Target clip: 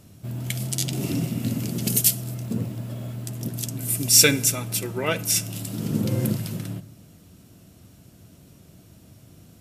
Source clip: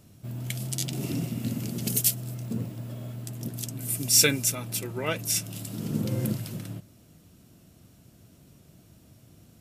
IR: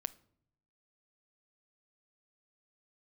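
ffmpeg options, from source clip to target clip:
-filter_complex "[0:a]asplit=2[a][b];[1:a]atrim=start_sample=2205,asetrate=27783,aresample=44100[c];[b][c]afir=irnorm=-1:irlink=0,volume=11dB[d];[a][d]amix=inputs=2:normalize=0,volume=-9.5dB"

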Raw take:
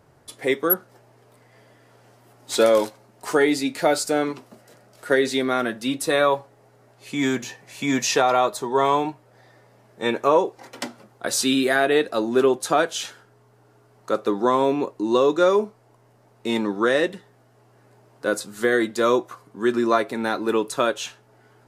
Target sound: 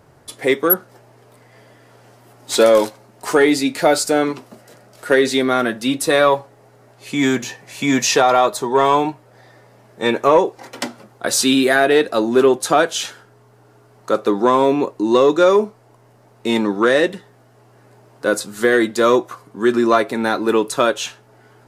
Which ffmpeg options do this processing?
-af "acontrast=50"

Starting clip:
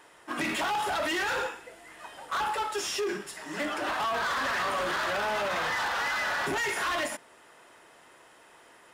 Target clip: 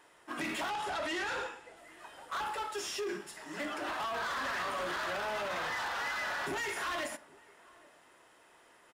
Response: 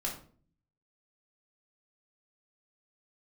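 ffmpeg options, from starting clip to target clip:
-filter_complex "[0:a]asettb=1/sr,asplit=3[a][b][c];[a]atrim=end=0.704[d];[b]atrim=start=0.7:end=1.77,asetpts=PTS-STARTPTS,afade=t=in:d=0.004:c=qsin,afade=t=out:st=1.066:d=0.004:c=qsin,lowpass=9.3k[e];[c]atrim=start=1.766[f];[d][e]acrossfade=d=0.004:c1=hsin:c2=qsin[g];[g][f]acrossfade=d=0.004:c1=qsin:c2=hsin,asplit=2[h][i];[i]adelay=816.3,volume=-24dB,highshelf=f=4k:g=-18.4[j];[h][j]amix=inputs=2:normalize=0,asplit=2[k][l];[1:a]atrim=start_sample=2205[m];[l][m]afir=irnorm=-1:irlink=0,volume=-15dB[n];[k][n]amix=inputs=2:normalize=0,volume=-7.5dB"

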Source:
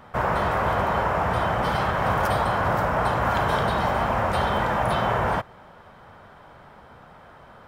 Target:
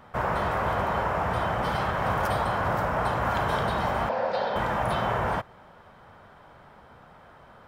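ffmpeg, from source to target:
-filter_complex "[0:a]asettb=1/sr,asplit=3[a][b][c];[a]atrim=end=4.094[d];[b]atrim=start=4.09:end=4.56,asetpts=PTS-STARTPTS,afade=t=in:d=0.004:c=qsin,afade=t=out:st=0.466:d=0.004:c=qsin,highpass=280,equalizer=f=360:t=q:w=4:g=-9,equalizer=f=510:t=q:w=4:g=9,equalizer=f=1.2k:t=q:w=4:g=-9,equalizer=f=2.1k:t=q:w=4:g=-5,equalizer=f=3k:t=q:w=4:g=-5,equalizer=f=4.6k:t=q:w=4:g=6,lowpass=f=5k:w=0.5412,lowpass=f=5k:w=1.3066[e];[c]atrim=start=4.556[f];[d][e]acrossfade=d=0.004:c1=hsin:c2=qsin[g];[g][f]acrossfade=d=0.004:c1=qsin:c2=hsin,volume=-3.5dB"

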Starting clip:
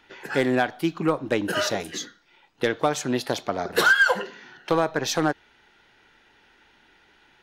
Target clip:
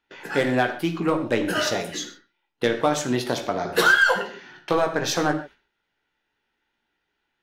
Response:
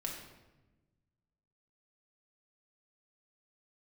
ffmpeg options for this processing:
-filter_complex "[0:a]agate=range=-20dB:threshold=-48dB:ratio=16:detection=peak,asplit=2[a][b];[1:a]atrim=start_sample=2205,atrim=end_sample=6174,adelay=17[c];[b][c]afir=irnorm=-1:irlink=0,volume=-4dB[d];[a][d]amix=inputs=2:normalize=0"

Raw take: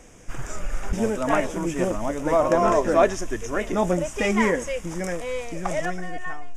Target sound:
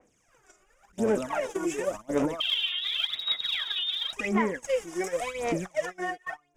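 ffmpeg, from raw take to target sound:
-filter_complex "[0:a]acompressor=threshold=-21dB:ratio=6,alimiter=level_in=3dB:limit=-24dB:level=0:latency=1:release=212,volume=-3dB,asettb=1/sr,asplit=3[a][b][c];[a]atrim=end=2.404[d];[b]atrim=start=2.4:end=4.13,asetpts=PTS-STARTPTS,afade=t=in:d=0.004:c=qsin,afade=t=out:st=1.726:d=0.004:c=qsin,lowpass=f=3.2k:t=q:w=0.5098,lowpass=f=3.2k:t=q:w=0.6013,lowpass=f=3.2k:t=q:w=0.9,lowpass=f=3.2k:t=q:w=2.563,afreqshift=-3800[e];[c]atrim=start=4.126[f];[d][e]acrossfade=d=0.004:c1=hsin:c2=qsin[g];[g][f]acrossfade=d=0.004:c1=qsin:c2=hsin,highpass=f=340:p=1,aphaser=in_gain=1:out_gain=1:delay=2.8:decay=0.73:speed=0.91:type=sinusoidal,agate=range=-24dB:threshold=-36dB:ratio=16:detection=peak,adynamicequalizer=threshold=0.00891:dfrequency=2600:dqfactor=0.7:tfrequency=2600:tqfactor=0.7:attack=5:release=100:ratio=0.375:range=2:mode=cutabove:tftype=highshelf,volume=4.5dB"

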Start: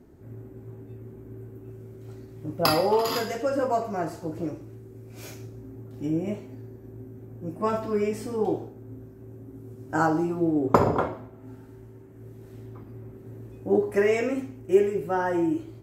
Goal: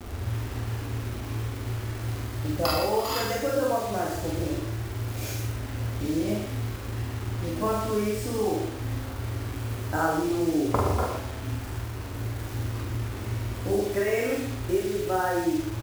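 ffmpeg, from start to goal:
-filter_complex "[0:a]lowshelf=f=110:t=q:w=3:g=10,acompressor=threshold=-38dB:ratio=2.5,acrusher=bits=7:mix=0:aa=0.000001,asplit=2[a][b];[b]adelay=43,volume=-2.5dB[c];[a][c]amix=inputs=2:normalize=0,asplit=2[d][e];[e]aecho=0:1:52.48|119.5:0.355|0.447[f];[d][f]amix=inputs=2:normalize=0,volume=7dB"

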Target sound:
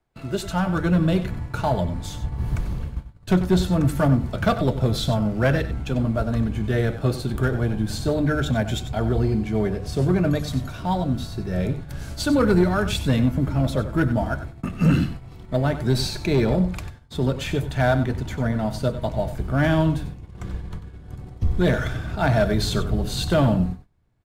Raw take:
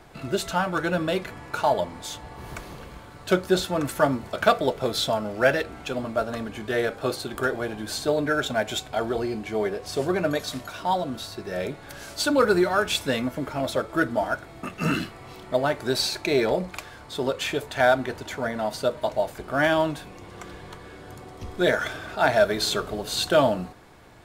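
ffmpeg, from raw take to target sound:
-filter_complex "[0:a]bandreject=f=50:t=h:w=6,bandreject=f=100:t=h:w=6,bandreject=f=150:t=h:w=6,agate=range=-25dB:threshold=-41dB:ratio=16:detection=peak,lowshelf=f=140:g=9.5,acrossover=split=210|2000[a][b][c];[a]dynaudnorm=f=240:g=5:m=14.5dB[d];[d][b][c]amix=inputs=3:normalize=0,asoftclip=type=tanh:threshold=-11.5dB,aeval=exprs='0.266*(cos(1*acos(clip(val(0)/0.266,-1,1)))-cos(1*PI/2))+0.0266*(cos(3*acos(clip(val(0)/0.266,-1,1)))-cos(3*PI/2))+0.00266*(cos(6*acos(clip(val(0)/0.266,-1,1)))-cos(6*PI/2))':c=same,aecho=1:1:94:0.251"

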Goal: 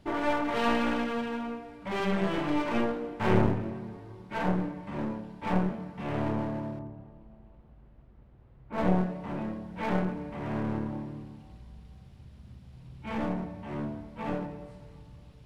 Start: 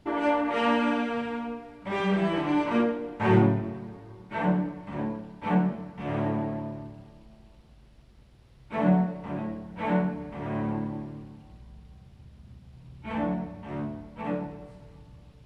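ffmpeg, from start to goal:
-filter_complex "[0:a]asettb=1/sr,asplit=3[a][b][c];[a]atrim=end=6.794[d];[b]atrim=start=6.79:end=8.78,asetpts=PTS-STARTPTS,afade=t=in:d=0.004:c=qsin,afade=t=out:st=1.986:d=0.004:c=qsin,lowpass=1.4k[e];[c]atrim=start=8.776[f];[d][e]acrossfade=d=0.004:c1=hsin:c2=qsin[g];[g][f]acrossfade=d=0.004:c1=qsin:c2=hsin,aeval=exprs='clip(val(0),-1,0.0211)':c=same"

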